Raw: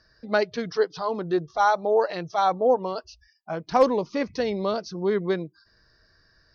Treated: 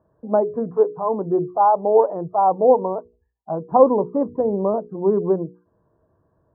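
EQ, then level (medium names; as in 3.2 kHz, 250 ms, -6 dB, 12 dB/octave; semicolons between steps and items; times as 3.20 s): high-pass 98 Hz 12 dB/octave; elliptic low-pass 1 kHz, stop band 70 dB; hum notches 60/120/180/240/300/360/420/480 Hz; +6.5 dB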